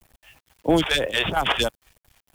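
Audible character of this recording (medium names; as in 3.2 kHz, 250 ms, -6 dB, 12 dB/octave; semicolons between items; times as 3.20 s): chopped level 4.4 Hz, depth 65%, duty 70%; phasing stages 2, 3.1 Hz, lowest notch 170–4900 Hz; a quantiser's noise floor 10-bit, dither none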